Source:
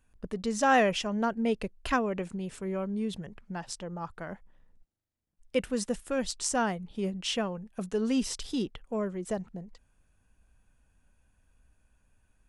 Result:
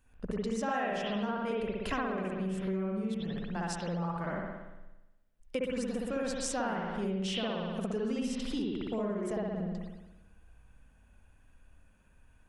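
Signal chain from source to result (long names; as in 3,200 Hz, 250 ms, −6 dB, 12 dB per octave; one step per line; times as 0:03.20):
spring reverb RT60 1 s, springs 58 ms, chirp 55 ms, DRR −5.5 dB
downward compressor 6 to 1, threshold −31 dBFS, peak gain reduction 17.5 dB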